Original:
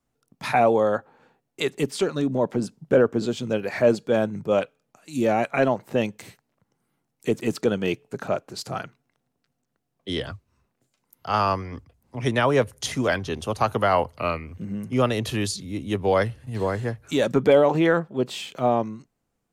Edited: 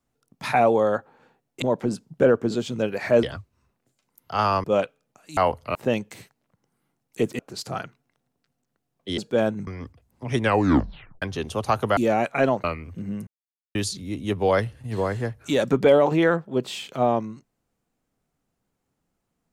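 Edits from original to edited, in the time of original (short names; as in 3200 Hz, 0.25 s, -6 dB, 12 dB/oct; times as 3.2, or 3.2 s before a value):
1.62–2.33 cut
3.94–4.43 swap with 10.18–11.59
5.16–5.83 swap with 13.89–14.27
7.47–8.39 cut
12.31 tape stop 0.83 s
14.9–15.38 mute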